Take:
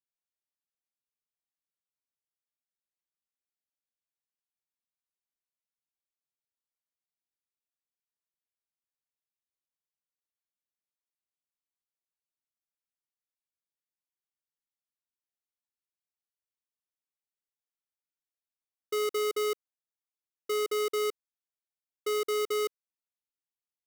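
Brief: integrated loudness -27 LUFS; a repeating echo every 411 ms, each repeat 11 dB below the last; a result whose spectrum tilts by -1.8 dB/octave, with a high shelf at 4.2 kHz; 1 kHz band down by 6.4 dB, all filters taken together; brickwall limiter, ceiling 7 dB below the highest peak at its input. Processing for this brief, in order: peaking EQ 1 kHz -8.5 dB; treble shelf 4.2 kHz -8 dB; peak limiter -34.5 dBFS; feedback delay 411 ms, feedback 28%, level -11 dB; trim +14 dB

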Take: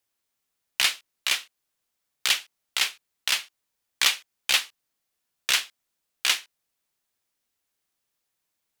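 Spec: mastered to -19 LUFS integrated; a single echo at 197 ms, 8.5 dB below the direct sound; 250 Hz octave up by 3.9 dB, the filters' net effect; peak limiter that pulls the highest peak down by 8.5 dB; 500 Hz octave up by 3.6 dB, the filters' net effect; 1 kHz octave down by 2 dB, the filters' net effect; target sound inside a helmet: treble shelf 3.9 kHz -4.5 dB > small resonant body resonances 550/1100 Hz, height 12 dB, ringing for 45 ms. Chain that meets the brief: peaking EQ 250 Hz +3.5 dB; peaking EQ 500 Hz +5 dB; peaking EQ 1 kHz -3.5 dB; peak limiter -15 dBFS; treble shelf 3.9 kHz -4.5 dB; delay 197 ms -8.5 dB; small resonant body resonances 550/1100 Hz, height 12 dB, ringing for 45 ms; trim +14 dB

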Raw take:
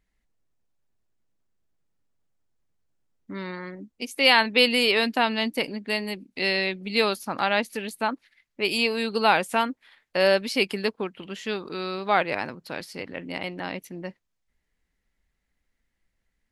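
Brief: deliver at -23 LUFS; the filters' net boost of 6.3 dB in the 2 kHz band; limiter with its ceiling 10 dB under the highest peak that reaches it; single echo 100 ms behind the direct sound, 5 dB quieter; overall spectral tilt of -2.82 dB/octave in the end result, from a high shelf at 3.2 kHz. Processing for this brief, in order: peaking EQ 2 kHz +6.5 dB; treble shelf 3.2 kHz +4 dB; peak limiter -9.5 dBFS; delay 100 ms -5 dB; trim -0.5 dB

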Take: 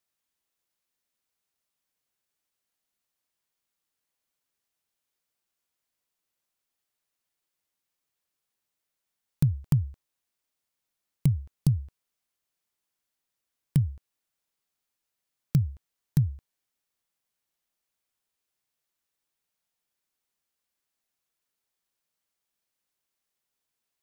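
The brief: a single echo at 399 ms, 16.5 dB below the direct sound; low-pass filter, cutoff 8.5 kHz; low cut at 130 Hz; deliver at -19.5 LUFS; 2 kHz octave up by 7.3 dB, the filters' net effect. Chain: high-pass 130 Hz; low-pass 8.5 kHz; peaking EQ 2 kHz +9 dB; delay 399 ms -16.5 dB; trim +13.5 dB

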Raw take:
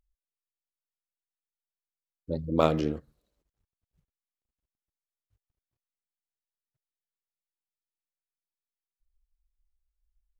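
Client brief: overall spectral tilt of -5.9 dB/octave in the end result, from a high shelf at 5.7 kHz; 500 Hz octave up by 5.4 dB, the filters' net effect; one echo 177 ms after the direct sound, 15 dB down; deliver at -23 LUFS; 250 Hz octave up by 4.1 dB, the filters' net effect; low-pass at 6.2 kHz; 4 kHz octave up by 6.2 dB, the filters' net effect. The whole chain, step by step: low-pass 6.2 kHz; peaking EQ 250 Hz +3.5 dB; peaking EQ 500 Hz +5.5 dB; peaking EQ 4 kHz +5.5 dB; treble shelf 5.7 kHz +7.5 dB; delay 177 ms -15 dB; trim +1.5 dB

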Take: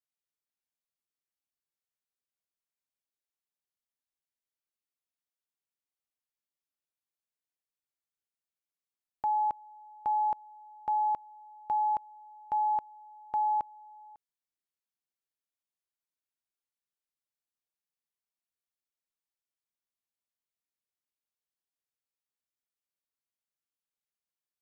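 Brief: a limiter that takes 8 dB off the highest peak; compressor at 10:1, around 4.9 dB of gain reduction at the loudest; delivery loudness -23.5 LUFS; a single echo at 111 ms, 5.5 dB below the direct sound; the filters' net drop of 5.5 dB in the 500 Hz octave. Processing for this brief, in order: peaking EQ 500 Hz -8 dB; compression 10:1, threshold -33 dBFS; peak limiter -35 dBFS; delay 111 ms -5.5 dB; trim +20.5 dB

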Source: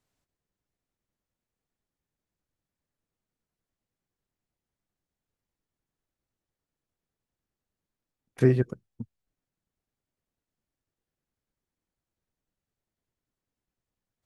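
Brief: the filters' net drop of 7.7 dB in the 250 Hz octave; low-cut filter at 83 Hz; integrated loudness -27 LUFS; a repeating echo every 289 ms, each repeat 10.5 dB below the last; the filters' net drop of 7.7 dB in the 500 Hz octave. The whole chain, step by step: high-pass 83 Hz; peaking EQ 250 Hz -7.5 dB; peaking EQ 500 Hz -7.5 dB; feedback delay 289 ms, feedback 30%, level -10.5 dB; trim +4 dB

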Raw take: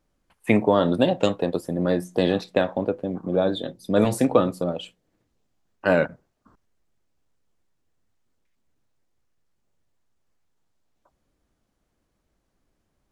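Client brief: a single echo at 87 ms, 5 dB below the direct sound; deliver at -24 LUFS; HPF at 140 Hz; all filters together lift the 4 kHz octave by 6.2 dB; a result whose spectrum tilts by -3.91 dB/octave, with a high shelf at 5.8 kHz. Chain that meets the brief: high-pass 140 Hz; peaking EQ 4 kHz +9 dB; treble shelf 5.8 kHz -5 dB; delay 87 ms -5 dB; trim -2 dB

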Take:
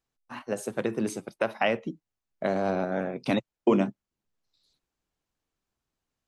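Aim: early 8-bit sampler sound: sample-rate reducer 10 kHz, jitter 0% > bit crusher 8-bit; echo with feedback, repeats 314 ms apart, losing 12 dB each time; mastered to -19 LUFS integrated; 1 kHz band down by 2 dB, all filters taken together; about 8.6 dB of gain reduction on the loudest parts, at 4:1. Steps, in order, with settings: peaking EQ 1 kHz -3 dB; compression 4:1, threshold -27 dBFS; feedback delay 314 ms, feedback 25%, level -12 dB; sample-rate reducer 10 kHz, jitter 0%; bit crusher 8-bit; trim +15 dB

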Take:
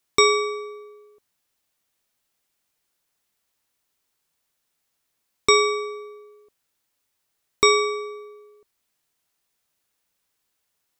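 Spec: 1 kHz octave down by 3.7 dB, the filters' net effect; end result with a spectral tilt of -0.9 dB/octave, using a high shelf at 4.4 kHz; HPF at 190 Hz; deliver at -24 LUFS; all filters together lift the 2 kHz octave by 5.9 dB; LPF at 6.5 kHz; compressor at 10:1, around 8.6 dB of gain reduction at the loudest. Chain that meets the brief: high-pass 190 Hz; low-pass 6.5 kHz; peaking EQ 1 kHz -7 dB; peaking EQ 2 kHz +8.5 dB; treble shelf 4.4 kHz -3 dB; compression 10:1, threshold -19 dBFS; trim +2 dB

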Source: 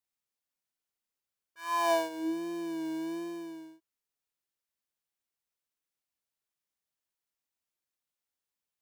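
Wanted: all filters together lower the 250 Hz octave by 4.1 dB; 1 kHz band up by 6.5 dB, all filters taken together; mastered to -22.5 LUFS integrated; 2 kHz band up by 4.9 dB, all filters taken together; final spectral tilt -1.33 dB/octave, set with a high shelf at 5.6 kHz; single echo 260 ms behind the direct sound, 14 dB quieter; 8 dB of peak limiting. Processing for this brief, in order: peaking EQ 250 Hz -7.5 dB; peaking EQ 1 kHz +6.5 dB; peaking EQ 2 kHz +5 dB; treble shelf 5.6 kHz -8.5 dB; peak limiter -21 dBFS; delay 260 ms -14 dB; trim +11 dB

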